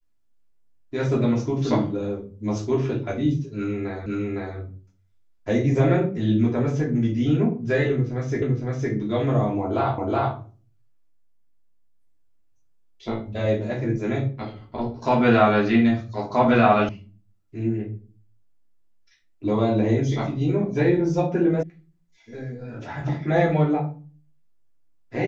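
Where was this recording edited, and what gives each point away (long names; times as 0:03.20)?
0:04.06: the same again, the last 0.51 s
0:08.42: the same again, the last 0.51 s
0:09.98: the same again, the last 0.37 s
0:16.89: cut off before it has died away
0:21.63: cut off before it has died away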